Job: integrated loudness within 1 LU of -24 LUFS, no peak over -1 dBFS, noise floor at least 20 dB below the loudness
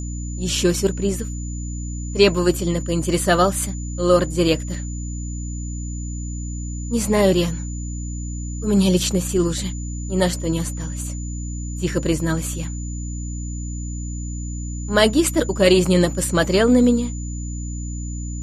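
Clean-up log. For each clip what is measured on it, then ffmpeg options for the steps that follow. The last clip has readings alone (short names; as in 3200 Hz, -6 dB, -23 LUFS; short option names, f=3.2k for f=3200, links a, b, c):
hum 60 Hz; harmonics up to 300 Hz; hum level -26 dBFS; steady tone 7000 Hz; tone level -37 dBFS; loudness -21.5 LUFS; peak -2.0 dBFS; loudness target -24.0 LUFS
-> -af "bandreject=f=60:t=h:w=6,bandreject=f=120:t=h:w=6,bandreject=f=180:t=h:w=6,bandreject=f=240:t=h:w=6,bandreject=f=300:t=h:w=6"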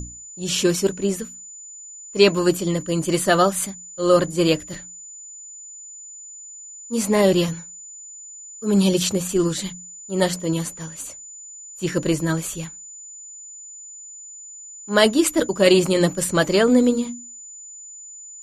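hum none; steady tone 7000 Hz; tone level -37 dBFS
-> -af "bandreject=f=7k:w=30"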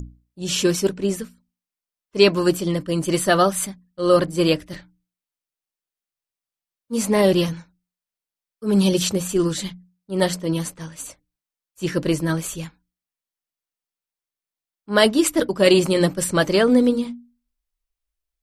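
steady tone none; loudness -20.0 LUFS; peak -2.5 dBFS; loudness target -24.0 LUFS
-> -af "volume=-4dB"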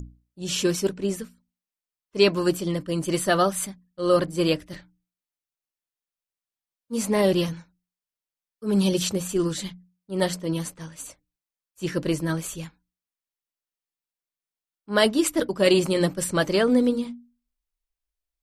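loudness -24.0 LUFS; peak -6.5 dBFS; noise floor -92 dBFS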